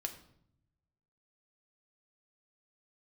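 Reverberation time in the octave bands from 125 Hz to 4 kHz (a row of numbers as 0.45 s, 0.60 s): 1.4 s, 1.1 s, 0.75 s, 0.65 s, 0.55 s, 0.55 s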